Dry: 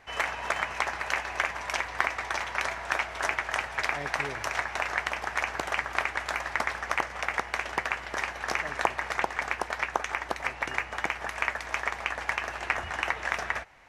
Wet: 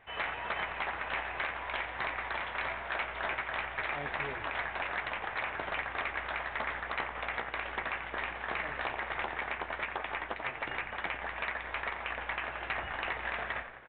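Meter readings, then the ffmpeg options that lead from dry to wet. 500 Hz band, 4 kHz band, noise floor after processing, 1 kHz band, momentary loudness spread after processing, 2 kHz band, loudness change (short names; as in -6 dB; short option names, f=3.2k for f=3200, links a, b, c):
-4.5 dB, -5.0 dB, -43 dBFS, -5.0 dB, 2 LU, -5.0 dB, -5.0 dB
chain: -filter_complex "[0:a]asplit=8[a][b][c][d][e][f][g][h];[b]adelay=88,afreqshift=-61,volume=-11.5dB[i];[c]adelay=176,afreqshift=-122,volume=-16.1dB[j];[d]adelay=264,afreqshift=-183,volume=-20.7dB[k];[e]adelay=352,afreqshift=-244,volume=-25.2dB[l];[f]adelay=440,afreqshift=-305,volume=-29.8dB[m];[g]adelay=528,afreqshift=-366,volume=-34.4dB[n];[h]adelay=616,afreqshift=-427,volume=-39dB[o];[a][i][j][k][l][m][n][o]amix=inputs=8:normalize=0,flanger=delay=8.8:depth=9.9:regen=-54:speed=0.19:shape=triangular,aresample=8000,asoftclip=type=hard:threshold=-27.5dB,aresample=44100"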